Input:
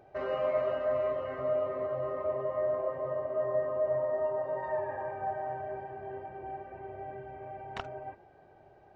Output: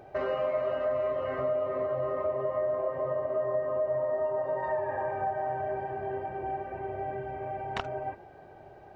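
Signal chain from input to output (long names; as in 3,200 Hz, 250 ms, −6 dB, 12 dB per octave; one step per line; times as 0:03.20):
downward compressor 3 to 1, threshold −36 dBFS, peak gain reduction 8.5 dB
level +7.5 dB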